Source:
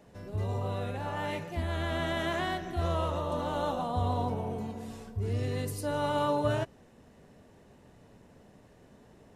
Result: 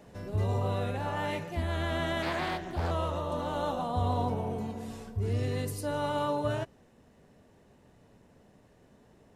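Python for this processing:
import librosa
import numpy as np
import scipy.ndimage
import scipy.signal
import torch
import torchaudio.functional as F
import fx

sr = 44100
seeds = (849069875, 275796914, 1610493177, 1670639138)

y = fx.rider(x, sr, range_db=5, speed_s=2.0)
y = fx.doppler_dist(y, sr, depth_ms=0.81, at=(2.22, 2.91))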